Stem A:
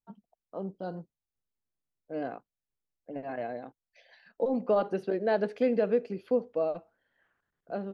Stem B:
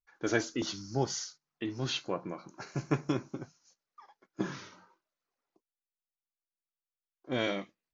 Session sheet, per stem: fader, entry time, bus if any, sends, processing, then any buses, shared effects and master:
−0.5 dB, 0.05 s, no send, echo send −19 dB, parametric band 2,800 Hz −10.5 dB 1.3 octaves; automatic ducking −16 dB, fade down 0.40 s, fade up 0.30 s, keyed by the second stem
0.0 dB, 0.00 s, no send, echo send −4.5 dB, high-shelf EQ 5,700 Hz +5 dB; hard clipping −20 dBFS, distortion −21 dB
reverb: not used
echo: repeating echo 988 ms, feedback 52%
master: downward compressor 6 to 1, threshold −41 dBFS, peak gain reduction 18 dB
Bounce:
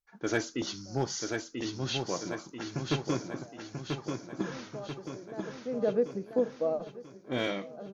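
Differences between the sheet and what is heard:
stem B: missing high-shelf EQ 5,700 Hz +5 dB
master: missing downward compressor 6 to 1, threshold −41 dBFS, peak gain reduction 18 dB

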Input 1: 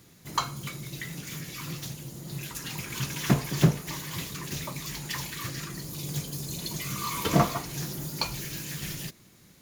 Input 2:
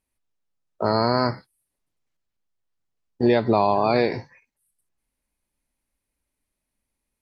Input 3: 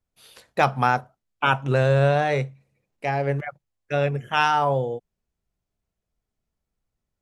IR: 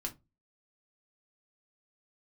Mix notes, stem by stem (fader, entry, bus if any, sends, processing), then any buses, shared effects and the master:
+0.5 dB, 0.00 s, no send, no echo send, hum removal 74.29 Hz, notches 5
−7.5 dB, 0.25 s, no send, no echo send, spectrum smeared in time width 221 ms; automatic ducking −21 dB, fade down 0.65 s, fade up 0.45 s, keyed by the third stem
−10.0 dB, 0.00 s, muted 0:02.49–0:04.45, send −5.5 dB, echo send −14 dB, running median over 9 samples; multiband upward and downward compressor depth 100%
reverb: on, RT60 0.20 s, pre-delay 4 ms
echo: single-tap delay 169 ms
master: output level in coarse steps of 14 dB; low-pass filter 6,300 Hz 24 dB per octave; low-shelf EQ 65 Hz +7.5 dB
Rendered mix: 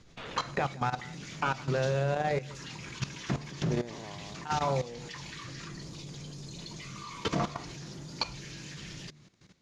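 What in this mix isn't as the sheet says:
stem 2: entry 0.25 s → 0.50 s
master: missing low-shelf EQ 65 Hz +7.5 dB

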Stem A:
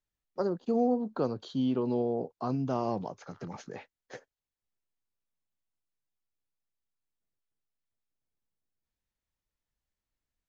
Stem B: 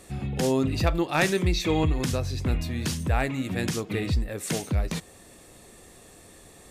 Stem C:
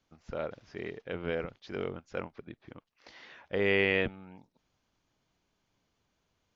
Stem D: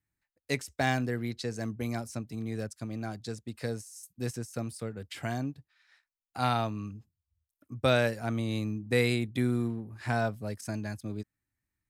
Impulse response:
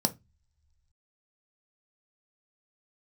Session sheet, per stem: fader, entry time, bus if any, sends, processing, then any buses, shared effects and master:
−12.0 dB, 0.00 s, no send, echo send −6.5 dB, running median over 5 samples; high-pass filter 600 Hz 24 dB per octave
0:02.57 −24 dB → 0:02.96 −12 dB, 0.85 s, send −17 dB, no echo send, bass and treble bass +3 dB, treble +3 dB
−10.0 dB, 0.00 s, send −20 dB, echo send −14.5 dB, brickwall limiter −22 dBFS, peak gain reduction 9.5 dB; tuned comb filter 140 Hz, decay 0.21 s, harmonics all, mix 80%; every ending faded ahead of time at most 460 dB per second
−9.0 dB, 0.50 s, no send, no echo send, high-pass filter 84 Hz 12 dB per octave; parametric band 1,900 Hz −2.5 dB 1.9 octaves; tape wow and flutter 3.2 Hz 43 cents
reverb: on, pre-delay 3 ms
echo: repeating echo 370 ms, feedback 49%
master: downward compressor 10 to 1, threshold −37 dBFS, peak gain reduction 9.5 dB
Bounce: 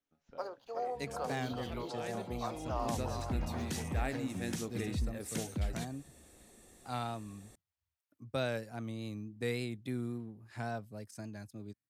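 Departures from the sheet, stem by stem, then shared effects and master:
stem A −12.0 dB → −3.0 dB
stem B: send −17 dB → −23 dB
master: missing downward compressor 10 to 1, threshold −37 dBFS, peak gain reduction 9.5 dB

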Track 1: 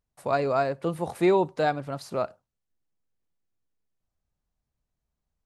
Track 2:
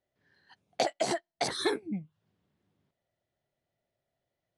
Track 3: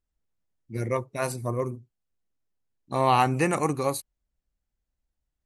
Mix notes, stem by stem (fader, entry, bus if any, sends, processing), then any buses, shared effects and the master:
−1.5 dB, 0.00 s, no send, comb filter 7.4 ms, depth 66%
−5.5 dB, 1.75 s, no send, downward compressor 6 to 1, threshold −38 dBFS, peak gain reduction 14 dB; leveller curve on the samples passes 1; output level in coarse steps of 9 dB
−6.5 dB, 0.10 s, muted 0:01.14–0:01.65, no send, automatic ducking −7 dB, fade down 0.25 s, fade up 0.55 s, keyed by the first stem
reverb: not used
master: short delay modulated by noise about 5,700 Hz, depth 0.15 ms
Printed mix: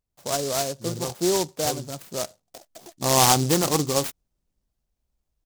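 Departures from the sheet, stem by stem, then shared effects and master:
stem 1: missing comb filter 7.4 ms, depth 66%
stem 3 −6.5 dB → +3.0 dB

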